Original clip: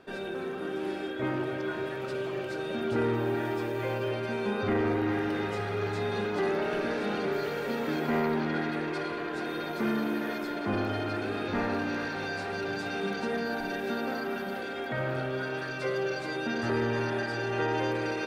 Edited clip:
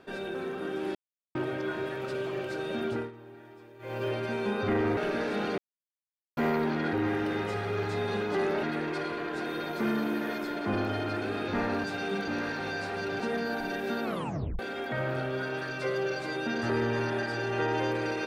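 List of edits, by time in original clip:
0.95–1.35 mute
2.85–4.05 dip -19.5 dB, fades 0.26 s
4.97–6.67 move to 8.63
7.28–8.07 mute
12.76–13.2 move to 11.84
14.04 tape stop 0.55 s

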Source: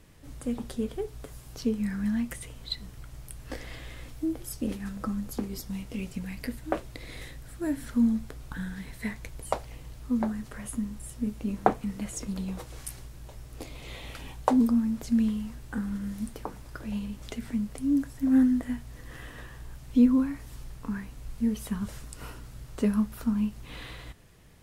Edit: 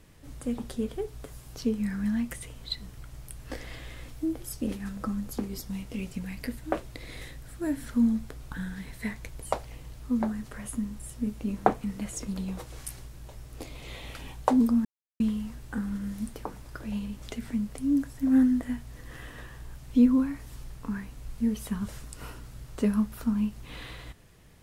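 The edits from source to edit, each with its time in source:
14.85–15.2 mute

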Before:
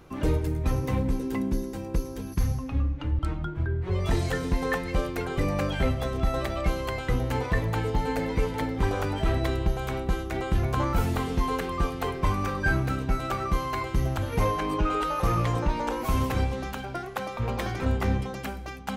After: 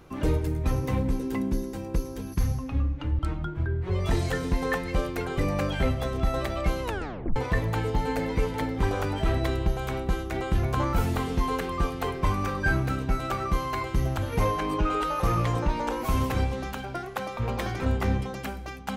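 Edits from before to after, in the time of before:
6.83 tape stop 0.53 s

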